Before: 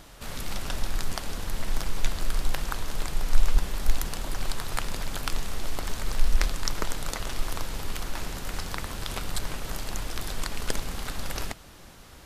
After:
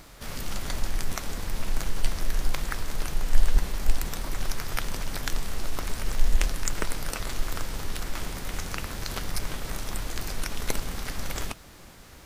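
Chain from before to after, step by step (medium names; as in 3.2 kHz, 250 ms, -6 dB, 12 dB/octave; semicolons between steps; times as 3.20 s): formant shift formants +4 st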